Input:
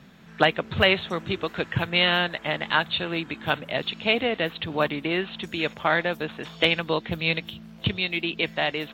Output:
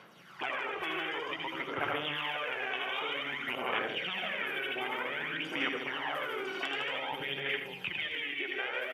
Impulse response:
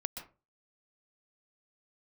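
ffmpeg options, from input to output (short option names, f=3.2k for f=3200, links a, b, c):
-filter_complex "[0:a]dynaudnorm=f=310:g=13:m=11.5dB,highpass=540,aecho=1:1:57|79|115|151|227|742:0.126|0.562|0.211|0.631|0.251|0.106,asetrate=37084,aresample=44100,atempo=1.18921[a];[1:a]atrim=start_sample=2205,asetrate=66150,aresample=44100[b];[a][b]afir=irnorm=-1:irlink=0,afftfilt=real='re*lt(hypot(re,im),0.2)':imag='im*lt(hypot(re,im),0.2)':win_size=1024:overlap=0.75,acompressor=threshold=-39dB:ratio=3,aphaser=in_gain=1:out_gain=1:delay=2.7:decay=0.53:speed=0.53:type=sinusoidal,volume=2dB"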